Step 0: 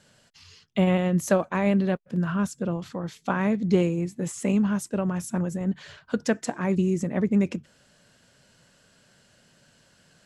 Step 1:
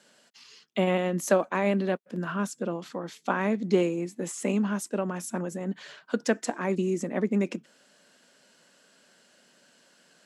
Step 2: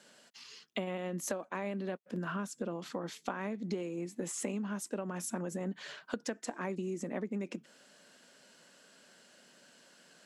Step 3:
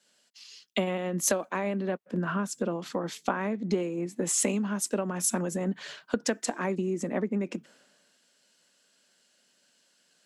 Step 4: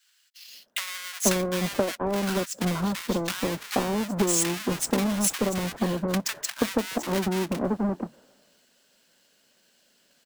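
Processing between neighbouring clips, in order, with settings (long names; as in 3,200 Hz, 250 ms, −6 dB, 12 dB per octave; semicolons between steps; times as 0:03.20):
high-pass filter 220 Hz 24 dB per octave
downward compressor 16 to 1, threshold −33 dBFS, peak gain reduction 17.5 dB
multiband upward and downward expander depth 70%; level +7.5 dB
each half-wave held at its own peak; multiband delay without the direct sound highs, lows 480 ms, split 1,300 Hz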